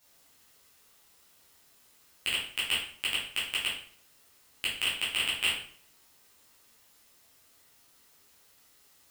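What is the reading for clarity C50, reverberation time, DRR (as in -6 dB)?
3.5 dB, 0.55 s, -9.0 dB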